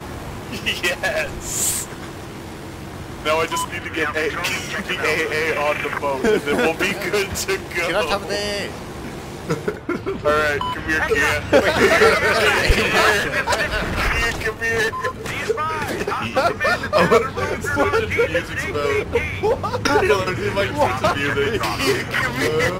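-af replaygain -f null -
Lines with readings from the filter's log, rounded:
track_gain = +0.0 dB
track_peak = 0.470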